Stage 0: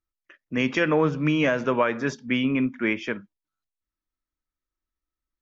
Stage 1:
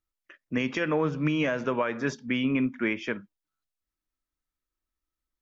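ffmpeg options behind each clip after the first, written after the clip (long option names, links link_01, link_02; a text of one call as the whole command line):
ffmpeg -i in.wav -af "alimiter=limit=-16dB:level=0:latency=1:release=358" out.wav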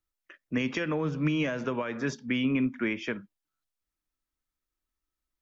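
ffmpeg -i in.wav -filter_complex "[0:a]acrossover=split=290|3000[link_01][link_02][link_03];[link_02]acompressor=threshold=-30dB:ratio=6[link_04];[link_01][link_04][link_03]amix=inputs=3:normalize=0" out.wav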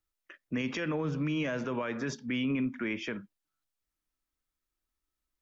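ffmpeg -i in.wav -af "alimiter=level_in=0.5dB:limit=-24dB:level=0:latency=1:release=28,volume=-0.5dB" out.wav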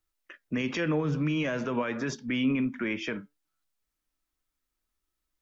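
ffmpeg -i in.wav -af "flanger=delay=2.6:depth=4.4:regen=80:speed=0.46:shape=triangular,volume=7.5dB" out.wav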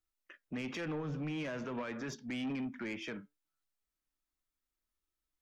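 ffmpeg -i in.wav -af "asoftclip=type=tanh:threshold=-26.5dB,volume=-7dB" out.wav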